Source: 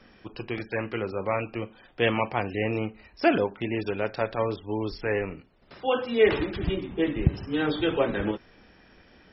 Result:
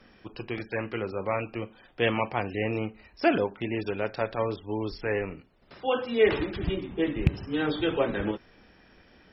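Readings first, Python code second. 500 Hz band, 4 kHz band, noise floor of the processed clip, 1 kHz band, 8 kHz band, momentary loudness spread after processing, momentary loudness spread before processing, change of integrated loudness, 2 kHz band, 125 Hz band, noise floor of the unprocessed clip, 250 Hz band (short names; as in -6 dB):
-1.5 dB, -1.5 dB, -58 dBFS, -1.5 dB, n/a, 12 LU, 12 LU, -1.5 dB, -1.5 dB, -1.5 dB, -57 dBFS, -1.5 dB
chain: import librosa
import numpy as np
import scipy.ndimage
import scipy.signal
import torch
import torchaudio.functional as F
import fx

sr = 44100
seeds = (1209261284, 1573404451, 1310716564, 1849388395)

y = fx.rattle_buzz(x, sr, strikes_db=-15.0, level_db=-15.0)
y = F.gain(torch.from_numpy(y), -1.5).numpy()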